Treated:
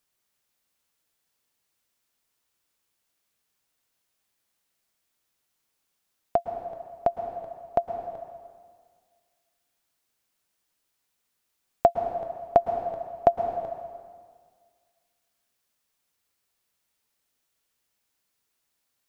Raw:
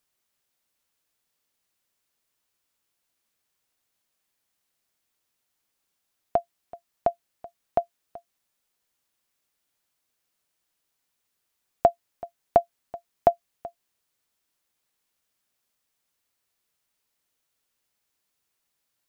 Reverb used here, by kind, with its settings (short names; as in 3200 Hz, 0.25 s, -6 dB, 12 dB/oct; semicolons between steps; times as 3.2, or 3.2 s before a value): plate-style reverb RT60 1.8 s, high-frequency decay 0.9×, pre-delay 0.1 s, DRR 5.5 dB